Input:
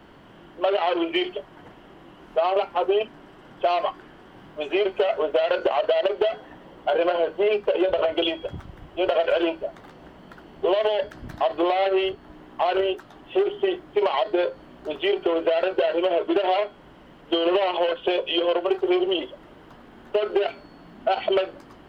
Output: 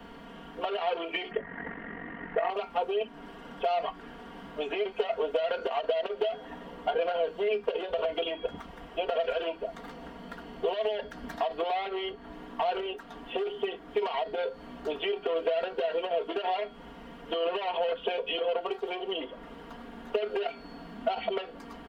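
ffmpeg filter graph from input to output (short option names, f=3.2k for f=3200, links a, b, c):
-filter_complex "[0:a]asettb=1/sr,asplit=3[a][b][c];[a]atrim=end=1.314[d];[b]atrim=start=1.31:end=2.5,asetpts=PTS-STARTPTS,afade=t=in:d=0.004:c=qsin,afade=t=out:st=1.186:d=0.004:c=qsin,lowpass=f=1.9k:t=q:w=9.7,equalizer=f=110:w=0.34:g=13,aeval=exprs='val(0)*sin(2*PI*23*n/s)':c=same[e];[c]atrim=start=2.496[f];[d][e]acrossfade=d=0.004:c1=hsin:c2=qsin[g];[g][f]acrossfade=d=0.004:c1=qsin:c2=hsin,acrossover=split=250|3100[h][i][j];[h]acompressor=threshold=-50dB:ratio=4[k];[i]acompressor=threshold=-31dB:ratio=4[l];[j]acompressor=threshold=-52dB:ratio=4[m];[k][l][m]amix=inputs=3:normalize=0,aecho=1:1:4.3:0.88"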